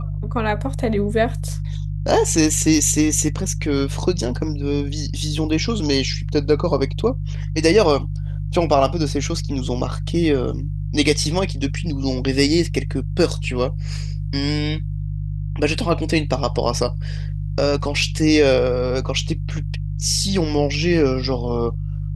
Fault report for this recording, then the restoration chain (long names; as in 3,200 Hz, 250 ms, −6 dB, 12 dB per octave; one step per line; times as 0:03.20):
mains hum 50 Hz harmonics 3 −25 dBFS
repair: hum removal 50 Hz, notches 3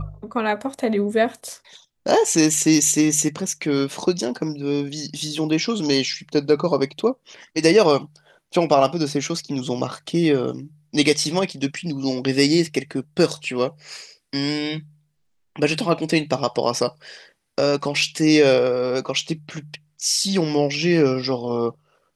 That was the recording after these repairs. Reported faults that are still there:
none of them is left